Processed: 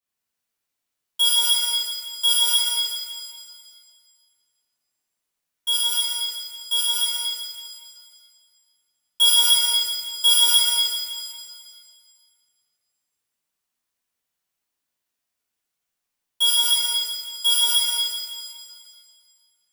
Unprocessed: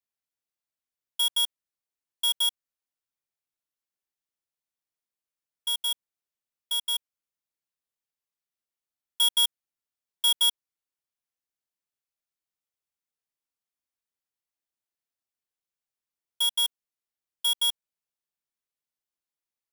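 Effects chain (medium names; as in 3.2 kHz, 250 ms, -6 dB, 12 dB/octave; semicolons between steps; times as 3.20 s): pitch-shifted reverb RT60 1.9 s, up +7 st, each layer -8 dB, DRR -9.5 dB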